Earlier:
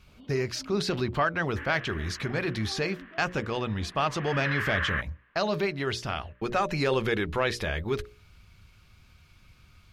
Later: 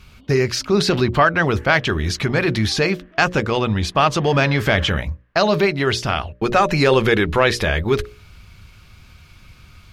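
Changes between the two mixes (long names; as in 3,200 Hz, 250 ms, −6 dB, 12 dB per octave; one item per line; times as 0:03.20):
speech +11.0 dB
second sound −7.0 dB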